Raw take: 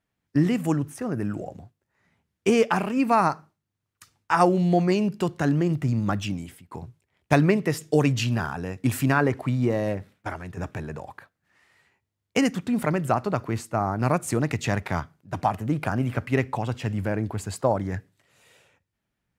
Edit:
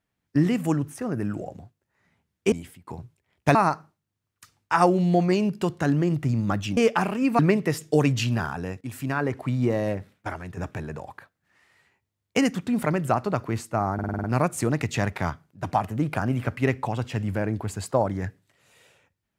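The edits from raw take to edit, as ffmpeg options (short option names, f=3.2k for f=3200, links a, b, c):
-filter_complex "[0:a]asplit=12[a][b][c][d][e][f][g][h][i][j][k][l];[a]atrim=end=2.522[m];[b]atrim=start=6.358:end=7.392[n];[c]atrim=start=3.138:end=6.362[o];[d]atrim=start=2.518:end=3.142[p];[e]atrim=start=7.388:end=8.81,asetpts=PTS-STARTPTS,afade=t=out:st=1.418:d=0.004:c=hsin:silence=0.199526[q];[f]atrim=start=8.81:end=13.992,asetpts=PTS-STARTPTS,afade=t=in:d=0.83:silence=0.199526[r];[g]atrim=start=13.938:end=13.992[s];[h]atrim=start=13.938:end=13.992[t];[i]atrim=start=13.938:end=13.992[u];[j]atrim=start=13.938:end=13.992[v];[k]atrim=start=13.938:end=13.992[w];[l]atrim=start=13.938[x];[m][n]acrossfade=d=0.004:c1=hsin:c2=hsin[y];[y][o]acrossfade=d=0.004:c1=hsin:c2=hsin[z];[z][p]acrossfade=d=0.004:c1=hsin:c2=hsin[aa];[q][r]concat=n=2:v=0:a=1[ab];[aa][ab]acrossfade=d=0.004:c1=hsin:c2=hsin[ac];[ac][s]acrossfade=d=0.004:c1=hsin:c2=hsin[ad];[ad][t]acrossfade=d=0.004:c1=hsin:c2=hsin[ae];[ae][u]acrossfade=d=0.004:c1=hsin:c2=hsin[af];[af][v]acrossfade=d=0.004:c1=hsin:c2=hsin[ag];[ag][w]acrossfade=d=0.004:c1=hsin:c2=hsin[ah];[ah][x]acrossfade=d=0.004:c1=hsin:c2=hsin"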